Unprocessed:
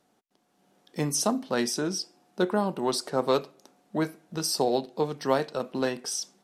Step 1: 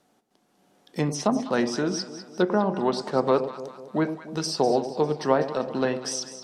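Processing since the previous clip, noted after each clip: low-pass that closes with the level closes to 1.9 kHz, closed at -20.5 dBFS; echo whose repeats swap between lows and highs 100 ms, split 820 Hz, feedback 69%, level -9 dB; trim +3 dB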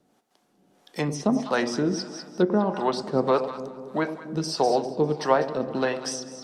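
harmonic tremolo 1.6 Hz, depth 70%, crossover 490 Hz; on a send at -19 dB: reverberation RT60 3.0 s, pre-delay 90 ms; on the sum: trim +3.5 dB

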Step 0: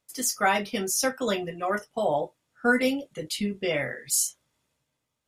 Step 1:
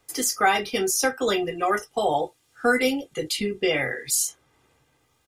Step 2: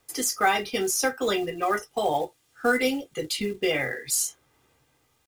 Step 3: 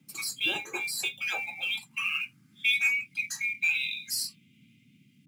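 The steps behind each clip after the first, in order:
comb 2.5 ms, depth 51%; three bands compressed up and down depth 40%; trim +3 dB
companded quantiser 6-bit; trim -2 dB
split-band scrambler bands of 2 kHz; high-pass sweep 240 Hz -> 2.6 kHz, 0.37–3.16 s; band noise 110–260 Hz -54 dBFS; trim -7.5 dB

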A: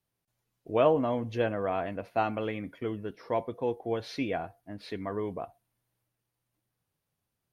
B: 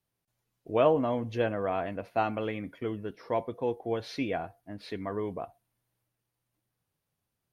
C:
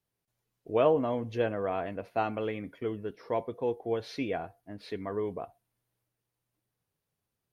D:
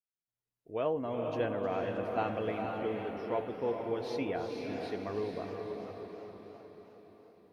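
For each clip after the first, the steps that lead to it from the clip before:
no audible change
peaking EQ 430 Hz +4 dB 0.38 oct; trim -2 dB
fade-in on the opening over 1.48 s; echo that smears into a reverb 467 ms, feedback 50%, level -3.5 dB; modulated delay 316 ms, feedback 57%, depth 170 cents, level -12.5 dB; trim -3.5 dB

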